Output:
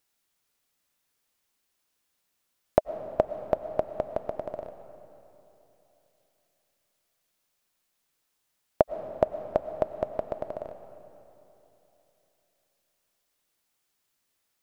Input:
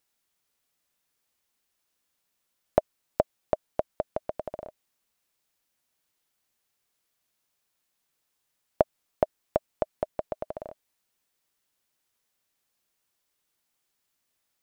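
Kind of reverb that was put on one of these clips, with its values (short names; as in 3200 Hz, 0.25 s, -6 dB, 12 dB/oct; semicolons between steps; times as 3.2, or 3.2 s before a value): digital reverb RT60 3.3 s, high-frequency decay 0.75×, pre-delay 70 ms, DRR 10 dB; gain +1 dB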